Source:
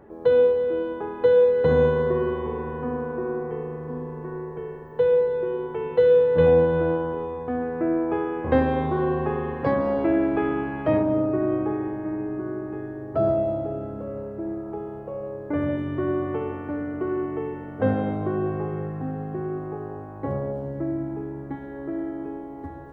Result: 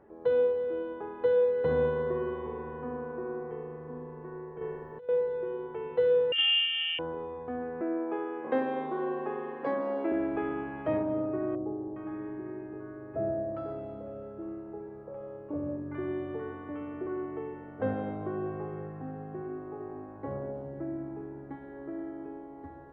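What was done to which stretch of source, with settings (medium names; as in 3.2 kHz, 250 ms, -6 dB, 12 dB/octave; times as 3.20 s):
4.61–5.09 s: compressor with a negative ratio -27 dBFS, ratio -0.5
6.32–6.99 s: frequency inversion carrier 3.3 kHz
7.81–10.12 s: high-pass 210 Hz 24 dB/octave
11.55–17.07 s: bands offset in time lows, highs 410 ms, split 870 Hz
18.96–19.71 s: echo throw 460 ms, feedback 70%, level -10 dB
whole clip: tone controls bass -4 dB, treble -9 dB; trim -7.5 dB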